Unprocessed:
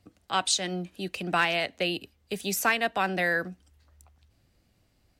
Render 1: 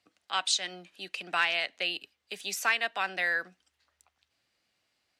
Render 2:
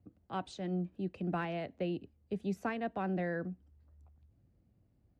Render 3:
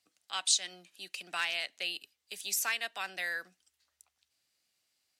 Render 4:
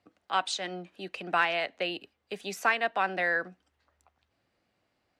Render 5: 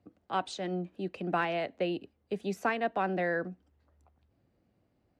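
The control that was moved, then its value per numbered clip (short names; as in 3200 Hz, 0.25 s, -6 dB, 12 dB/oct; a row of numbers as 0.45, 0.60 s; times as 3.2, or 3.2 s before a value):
band-pass, frequency: 2900, 130, 7500, 1100, 360 Hz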